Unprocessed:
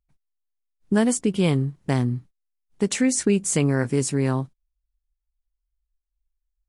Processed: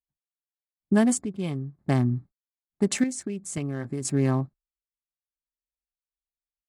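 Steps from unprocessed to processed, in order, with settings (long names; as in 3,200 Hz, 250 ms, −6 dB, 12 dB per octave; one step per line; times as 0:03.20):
adaptive Wiener filter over 15 samples
square-wave tremolo 0.56 Hz, depth 65%, duty 70%
0:03.12–0:04.05: downward compressor 6 to 1, threshold −27 dBFS, peak gain reduction 10 dB
notch comb filter 480 Hz
noise gate with hold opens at −53 dBFS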